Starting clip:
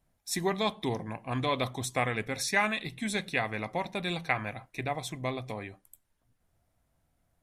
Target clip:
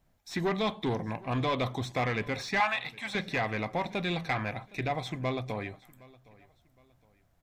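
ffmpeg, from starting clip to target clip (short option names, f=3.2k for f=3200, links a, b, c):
-filter_complex "[0:a]asoftclip=type=tanh:threshold=-27dB,asettb=1/sr,asplit=3[a][b][c];[a]atrim=end=2.604[d];[b]atrim=start=2.6:end=3.15,asetpts=PTS-STARTPTS,afade=t=in:d=0.004:c=qsin,afade=t=out:st=0.546:d=0.004:c=qsin,lowshelf=f=560:t=q:w=3:g=-13.5[e];[c]atrim=start=3.146[f];[d][e]acrossfade=d=0.004:c1=hsin:c2=qsin[g];[g][f]acrossfade=d=0.004:c1=qsin:c2=hsin,acrossover=split=4100[h][i];[i]acompressor=threshold=-53dB:ratio=4:attack=1:release=60[j];[h][j]amix=inputs=2:normalize=0,equalizer=f=10k:w=2.3:g=-9.5,aecho=1:1:764|1528:0.0708|0.0241,volume=4dB"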